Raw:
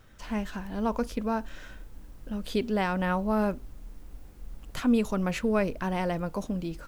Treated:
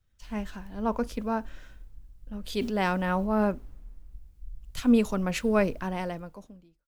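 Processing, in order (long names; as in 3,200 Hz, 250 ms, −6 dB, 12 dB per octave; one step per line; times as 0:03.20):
fade-out on the ending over 1.06 s
0:02.50–0:03.41: transient designer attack −3 dB, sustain +6 dB
multiband upward and downward expander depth 70%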